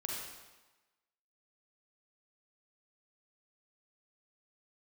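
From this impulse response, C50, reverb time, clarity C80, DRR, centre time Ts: -1.0 dB, 1.2 s, 2.0 dB, -2.5 dB, 80 ms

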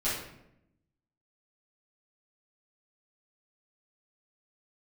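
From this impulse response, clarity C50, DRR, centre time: 1.5 dB, -11.5 dB, 54 ms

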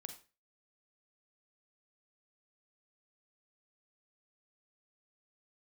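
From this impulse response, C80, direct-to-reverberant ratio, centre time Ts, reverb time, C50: 14.0 dB, 6.5 dB, 13 ms, 0.30 s, 9.0 dB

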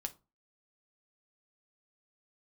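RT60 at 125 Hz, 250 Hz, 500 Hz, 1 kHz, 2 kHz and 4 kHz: 0.40 s, 0.35 s, 0.30 s, 0.30 s, 0.20 s, 0.20 s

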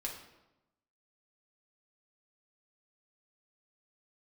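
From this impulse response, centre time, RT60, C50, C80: 31 ms, 0.95 s, 6.0 dB, 9.0 dB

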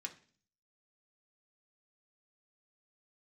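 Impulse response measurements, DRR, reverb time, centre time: 2.0 dB, 0.45 s, 8 ms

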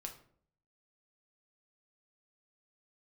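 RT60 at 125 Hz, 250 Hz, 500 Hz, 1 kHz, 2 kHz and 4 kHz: 0.85 s, 0.70 s, 0.65 s, 0.50 s, 0.45 s, 0.35 s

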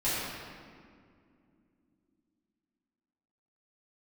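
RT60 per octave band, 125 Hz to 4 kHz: 3.3 s, 4.3 s, 2.6 s, 2.0 s, 1.7 s, 1.3 s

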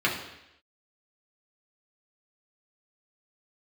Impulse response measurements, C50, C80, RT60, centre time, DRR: 6.0 dB, 9.0 dB, 0.85 s, 34 ms, -4.5 dB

